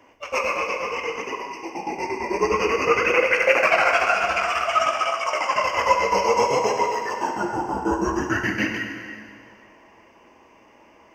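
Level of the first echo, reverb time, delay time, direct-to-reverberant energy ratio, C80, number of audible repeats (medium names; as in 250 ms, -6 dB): no echo, 2.2 s, no echo, 3.0 dB, 6.0 dB, no echo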